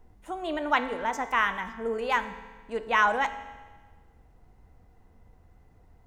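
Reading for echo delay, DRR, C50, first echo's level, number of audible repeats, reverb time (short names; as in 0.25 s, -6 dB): none, 10.0 dB, 12.0 dB, none, none, 1.4 s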